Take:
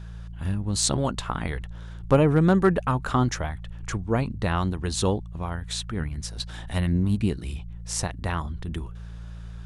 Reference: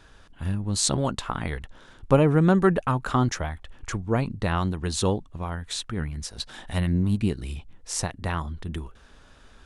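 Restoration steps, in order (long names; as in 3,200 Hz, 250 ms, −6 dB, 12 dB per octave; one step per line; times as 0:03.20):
clipped peaks rebuilt −9 dBFS
hum removal 56.9 Hz, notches 3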